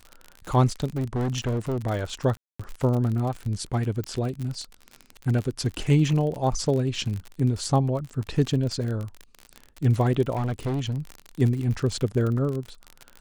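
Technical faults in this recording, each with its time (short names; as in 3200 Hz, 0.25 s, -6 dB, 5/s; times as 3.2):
crackle 48/s -29 dBFS
0.97–1.78 clipped -22.5 dBFS
2.37–2.6 gap 0.225 s
4.04 pop -18 dBFS
10.35–10.98 clipped -23 dBFS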